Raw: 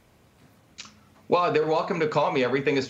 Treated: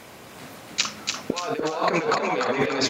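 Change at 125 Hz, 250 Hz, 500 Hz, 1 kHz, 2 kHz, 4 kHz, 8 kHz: -2.5 dB, +0.5 dB, -2.5 dB, +0.5 dB, +3.0 dB, +9.0 dB, n/a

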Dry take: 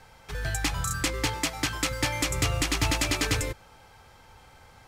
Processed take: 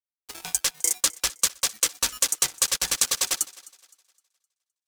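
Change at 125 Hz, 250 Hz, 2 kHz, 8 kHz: -22.0, -15.5, -4.0, +9.5 dB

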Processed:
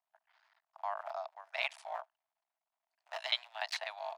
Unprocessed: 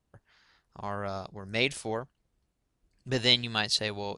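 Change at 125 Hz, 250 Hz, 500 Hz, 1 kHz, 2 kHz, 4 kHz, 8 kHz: under -40 dB, under -40 dB, -10.0 dB, -2.5 dB, -7.5 dB, -11.5 dB, -15.0 dB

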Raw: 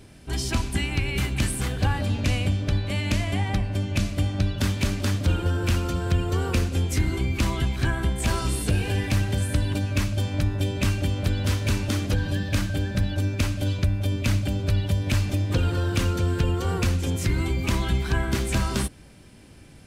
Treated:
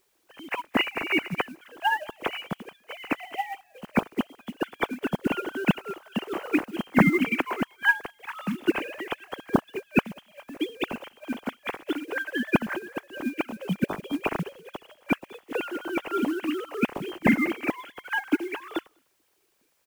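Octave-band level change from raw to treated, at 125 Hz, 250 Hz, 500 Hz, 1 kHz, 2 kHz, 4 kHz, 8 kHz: -15.5, +1.0, +0.5, +3.0, +4.0, -5.0, -16.5 dB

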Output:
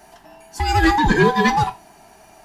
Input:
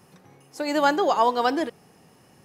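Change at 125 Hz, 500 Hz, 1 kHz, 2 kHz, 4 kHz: n/a, +2.0 dB, +4.5 dB, +10.5 dB, +5.5 dB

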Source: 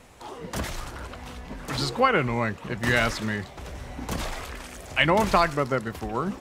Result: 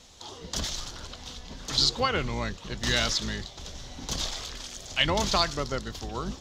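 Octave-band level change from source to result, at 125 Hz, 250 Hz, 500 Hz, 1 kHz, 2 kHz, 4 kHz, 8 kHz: -4.5, -6.0, -6.5, -6.5, -6.0, +6.0, +6.0 dB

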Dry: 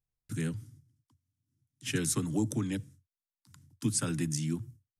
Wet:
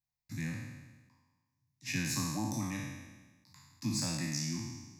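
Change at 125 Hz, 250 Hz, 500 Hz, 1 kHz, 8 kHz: -3.5, -4.0, -9.5, +2.5, -3.0 dB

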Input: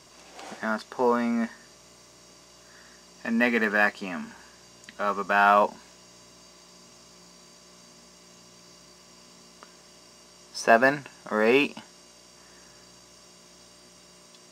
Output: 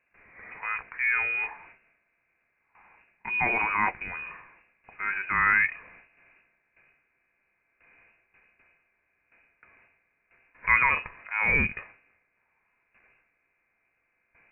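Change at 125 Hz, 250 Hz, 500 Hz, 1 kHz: +1.0, -14.5, -18.0, -5.0 dB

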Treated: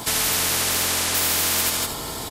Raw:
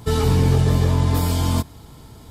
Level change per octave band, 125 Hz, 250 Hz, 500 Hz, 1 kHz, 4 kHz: -19.5, -11.0, -7.0, 0.0, +10.0 dB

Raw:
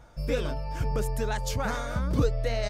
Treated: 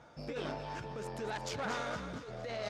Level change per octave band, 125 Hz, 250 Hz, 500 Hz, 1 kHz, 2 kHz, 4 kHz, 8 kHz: -15.5, -10.5, -9.0, -5.5, -5.5, -6.0, -9.5 dB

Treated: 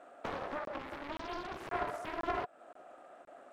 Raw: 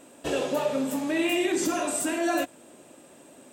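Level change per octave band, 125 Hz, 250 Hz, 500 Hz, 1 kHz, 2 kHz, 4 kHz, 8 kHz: -7.5, -19.0, -13.5, -5.0, -11.5, -15.5, -30.5 dB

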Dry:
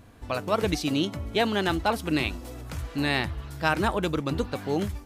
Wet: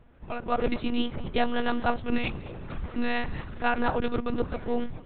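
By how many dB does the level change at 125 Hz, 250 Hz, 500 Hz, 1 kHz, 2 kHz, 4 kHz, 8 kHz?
-6.0 dB, -2.0 dB, -2.5 dB, -0.5 dB, -3.0 dB, -6.5 dB, under -40 dB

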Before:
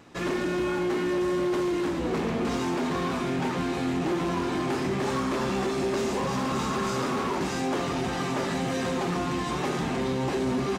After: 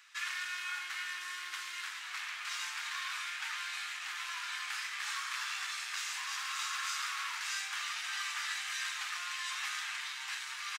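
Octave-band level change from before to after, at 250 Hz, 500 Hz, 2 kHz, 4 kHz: under -40 dB, under -40 dB, -1.0 dB, 0.0 dB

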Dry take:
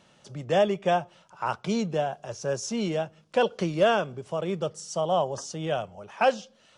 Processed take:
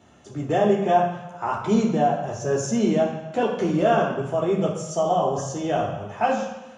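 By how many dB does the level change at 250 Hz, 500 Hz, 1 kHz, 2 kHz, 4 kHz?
+8.0, +4.0, +5.5, +0.5, -2.5 dB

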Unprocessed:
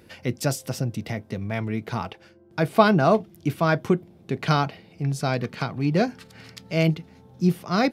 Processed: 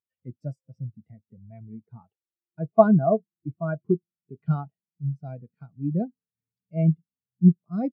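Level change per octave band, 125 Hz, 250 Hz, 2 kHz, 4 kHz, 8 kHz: -1.0 dB, -0.5 dB, -16.0 dB, under -35 dB, under -40 dB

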